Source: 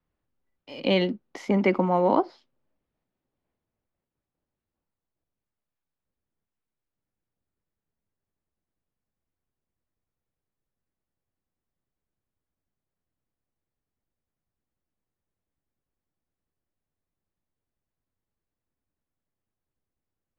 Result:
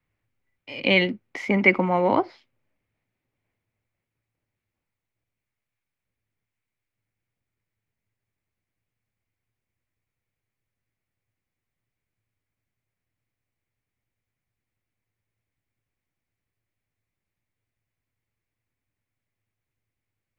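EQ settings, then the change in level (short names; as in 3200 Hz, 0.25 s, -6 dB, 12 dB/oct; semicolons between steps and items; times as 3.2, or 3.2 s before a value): bell 110 Hz +14 dB 0.27 oct; bell 2200 Hz +13 dB 0.69 oct; 0.0 dB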